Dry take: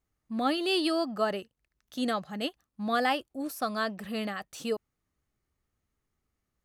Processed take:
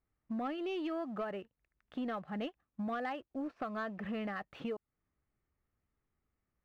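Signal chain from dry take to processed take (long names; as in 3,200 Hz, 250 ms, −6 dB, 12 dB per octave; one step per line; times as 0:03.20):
low-pass filter 2,500 Hz 24 dB per octave
downward compressor 5 to 1, threshold −38 dBFS, peak gain reduction 14.5 dB
leveller curve on the samples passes 1
level −1 dB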